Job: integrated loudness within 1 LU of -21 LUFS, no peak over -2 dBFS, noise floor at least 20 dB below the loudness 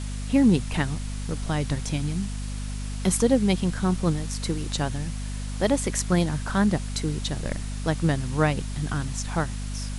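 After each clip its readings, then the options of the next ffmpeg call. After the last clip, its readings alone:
hum 50 Hz; highest harmonic 250 Hz; hum level -29 dBFS; noise floor -32 dBFS; noise floor target -46 dBFS; loudness -26.0 LUFS; peak level -6.5 dBFS; loudness target -21.0 LUFS
-> -af "bandreject=f=50:t=h:w=4,bandreject=f=100:t=h:w=4,bandreject=f=150:t=h:w=4,bandreject=f=200:t=h:w=4,bandreject=f=250:t=h:w=4"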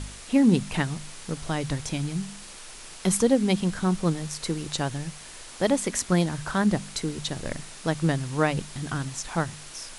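hum not found; noise floor -44 dBFS; noise floor target -47 dBFS
-> -af "afftdn=nr=6:nf=-44"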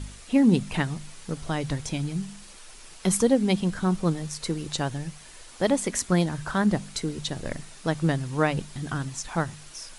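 noise floor -47 dBFS; loudness -27.0 LUFS; peak level -7.0 dBFS; loudness target -21.0 LUFS
-> -af "volume=2,alimiter=limit=0.794:level=0:latency=1"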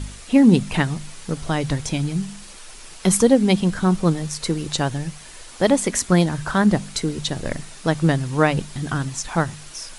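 loudness -21.0 LUFS; peak level -2.0 dBFS; noise floor -41 dBFS

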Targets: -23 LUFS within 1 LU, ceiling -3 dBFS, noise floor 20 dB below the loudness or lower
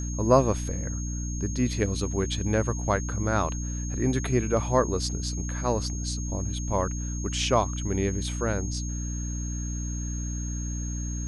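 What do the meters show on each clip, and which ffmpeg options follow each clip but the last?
hum 60 Hz; highest harmonic 300 Hz; hum level -29 dBFS; steady tone 6.5 kHz; tone level -38 dBFS; loudness -28.0 LUFS; peak level -6.5 dBFS; loudness target -23.0 LUFS
-> -af "bandreject=f=60:t=h:w=4,bandreject=f=120:t=h:w=4,bandreject=f=180:t=h:w=4,bandreject=f=240:t=h:w=4,bandreject=f=300:t=h:w=4"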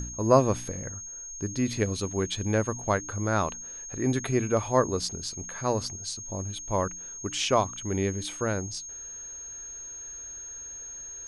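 hum not found; steady tone 6.5 kHz; tone level -38 dBFS
-> -af "bandreject=f=6500:w=30"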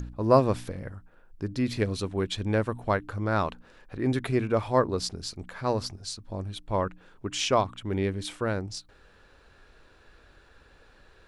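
steady tone not found; loudness -28.5 LUFS; peak level -6.0 dBFS; loudness target -23.0 LUFS
-> -af "volume=1.88,alimiter=limit=0.708:level=0:latency=1"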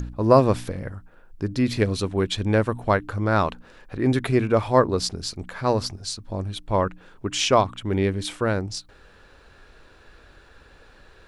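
loudness -23.5 LUFS; peak level -3.0 dBFS; noise floor -52 dBFS

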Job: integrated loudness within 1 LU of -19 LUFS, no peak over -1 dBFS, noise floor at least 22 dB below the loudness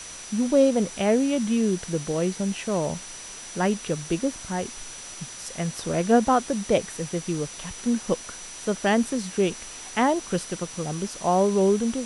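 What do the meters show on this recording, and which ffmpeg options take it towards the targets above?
steady tone 5.9 kHz; tone level -41 dBFS; noise floor -40 dBFS; noise floor target -47 dBFS; loudness -25.0 LUFS; peak level -7.5 dBFS; loudness target -19.0 LUFS
-> -af "bandreject=f=5900:w=30"
-af "afftdn=nr=7:nf=-40"
-af "volume=2"

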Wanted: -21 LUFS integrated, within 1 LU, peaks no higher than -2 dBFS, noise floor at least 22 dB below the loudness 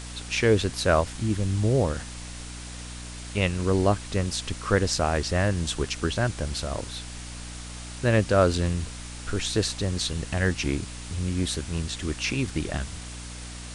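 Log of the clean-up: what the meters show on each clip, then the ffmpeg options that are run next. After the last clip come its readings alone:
hum 60 Hz; highest harmonic 300 Hz; hum level -37 dBFS; noise floor -39 dBFS; noise floor target -49 dBFS; loudness -26.5 LUFS; peak level -7.5 dBFS; loudness target -21.0 LUFS
-> -af "bandreject=f=60:t=h:w=4,bandreject=f=120:t=h:w=4,bandreject=f=180:t=h:w=4,bandreject=f=240:t=h:w=4,bandreject=f=300:t=h:w=4"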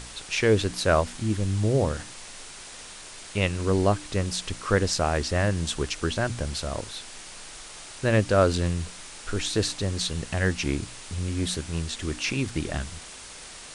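hum not found; noise floor -43 dBFS; noise floor target -49 dBFS
-> -af "afftdn=nr=6:nf=-43"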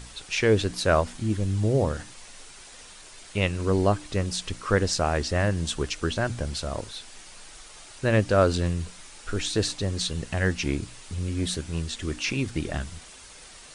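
noise floor -47 dBFS; noise floor target -49 dBFS
-> -af "afftdn=nr=6:nf=-47"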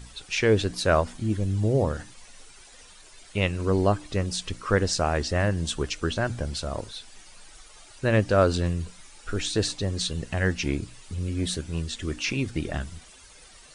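noise floor -50 dBFS; loudness -26.5 LUFS; peak level -8.5 dBFS; loudness target -21.0 LUFS
-> -af "volume=1.88"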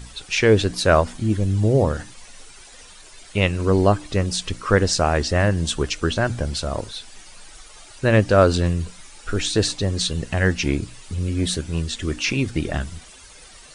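loudness -21.0 LUFS; peak level -3.0 dBFS; noise floor -45 dBFS

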